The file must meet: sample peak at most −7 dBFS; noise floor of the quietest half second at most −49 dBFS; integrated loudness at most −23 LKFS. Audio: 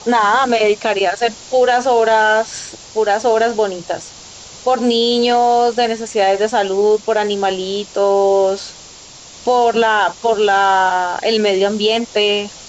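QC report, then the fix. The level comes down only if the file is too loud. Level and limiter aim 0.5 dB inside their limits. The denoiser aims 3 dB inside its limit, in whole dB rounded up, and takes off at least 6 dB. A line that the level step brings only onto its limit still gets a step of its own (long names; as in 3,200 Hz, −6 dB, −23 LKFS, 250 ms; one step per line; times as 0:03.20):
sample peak −4.5 dBFS: out of spec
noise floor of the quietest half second −38 dBFS: out of spec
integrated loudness −15.0 LKFS: out of spec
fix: broadband denoise 6 dB, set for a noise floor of −38 dBFS
level −8.5 dB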